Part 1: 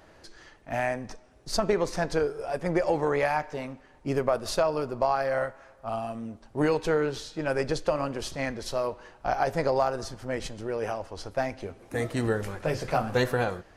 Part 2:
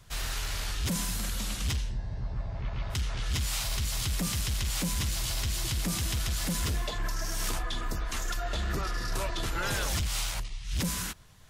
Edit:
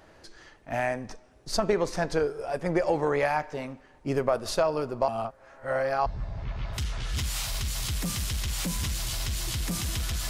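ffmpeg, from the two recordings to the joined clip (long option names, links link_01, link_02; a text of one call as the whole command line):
ffmpeg -i cue0.wav -i cue1.wav -filter_complex "[0:a]apad=whole_dur=10.29,atrim=end=10.29,asplit=2[link_01][link_02];[link_01]atrim=end=5.082[link_03];[link_02]atrim=start=5.078:end=6.062,asetpts=PTS-STARTPTS,areverse[link_04];[1:a]atrim=start=2.228:end=6.46[link_05];[link_03][link_04]acrossfade=duration=0.004:curve1=hsin:curve2=hsin[link_06];[link_06][link_05]acrossfade=duration=0.004:curve1=hsin:curve2=hsin" out.wav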